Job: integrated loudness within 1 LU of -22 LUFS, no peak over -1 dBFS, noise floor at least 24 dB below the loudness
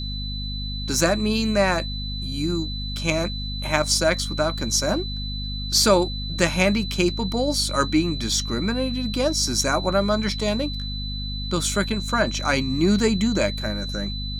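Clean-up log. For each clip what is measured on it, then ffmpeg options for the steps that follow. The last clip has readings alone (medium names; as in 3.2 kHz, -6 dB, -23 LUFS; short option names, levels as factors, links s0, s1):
hum 50 Hz; highest harmonic 250 Hz; hum level -28 dBFS; steady tone 4 kHz; tone level -32 dBFS; loudness -23.0 LUFS; peak level -3.0 dBFS; loudness target -22.0 LUFS
-> -af "bandreject=f=50:t=h:w=4,bandreject=f=100:t=h:w=4,bandreject=f=150:t=h:w=4,bandreject=f=200:t=h:w=4,bandreject=f=250:t=h:w=4"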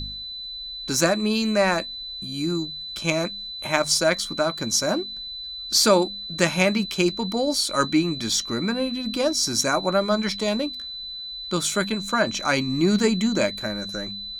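hum not found; steady tone 4 kHz; tone level -32 dBFS
-> -af "bandreject=f=4000:w=30"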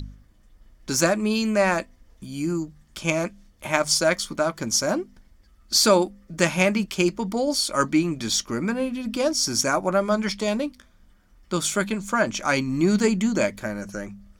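steady tone not found; loudness -23.5 LUFS; peak level -3.0 dBFS; loudness target -22.0 LUFS
-> -af "volume=1.19"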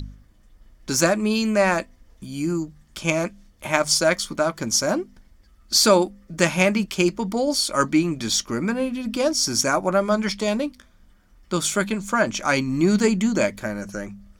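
loudness -22.0 LUFS; peak level -1.5 dBFS; noise floor -55 dBFS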